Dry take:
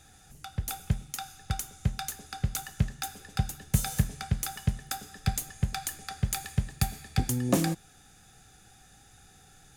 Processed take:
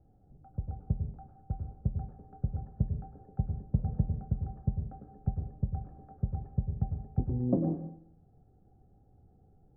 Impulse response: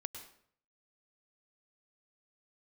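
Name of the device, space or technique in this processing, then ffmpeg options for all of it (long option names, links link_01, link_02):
next room: -filter_complex "[0:a]lowpass=frequency=630:width=0.5412,lowpass=frequency=630:width=1.3066[link_01];[1:a]atrim=start_sample=2205[link_02];[link_01][link_02]afir=irnorm=-1:irlink=0"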